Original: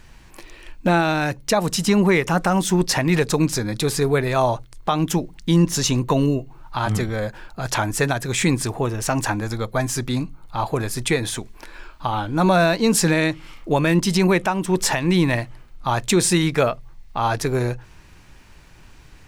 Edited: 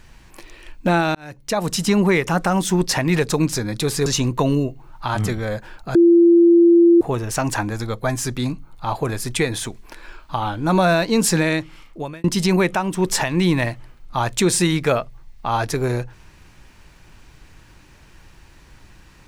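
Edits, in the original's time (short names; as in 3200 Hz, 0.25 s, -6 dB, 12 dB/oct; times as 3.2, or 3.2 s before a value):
1.15–1.7 fade in
4.06–5.77 cut
7.66–8.72 bleep 341 Hz -8 dBFS
13–13.95 fade out equal-power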